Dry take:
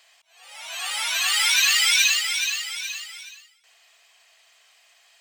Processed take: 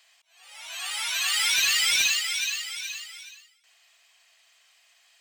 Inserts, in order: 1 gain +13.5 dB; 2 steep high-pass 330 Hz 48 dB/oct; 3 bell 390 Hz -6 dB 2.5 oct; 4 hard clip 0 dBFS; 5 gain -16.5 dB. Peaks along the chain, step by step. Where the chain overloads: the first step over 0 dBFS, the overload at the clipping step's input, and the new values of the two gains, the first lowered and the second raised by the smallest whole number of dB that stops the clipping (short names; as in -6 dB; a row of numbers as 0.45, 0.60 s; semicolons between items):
+6.0, +7.0, +6.5, 0.0, -16.5 dBFS; step 1, 6.5 dB; step 1 +6.5 dB, step 5 -9.5 dB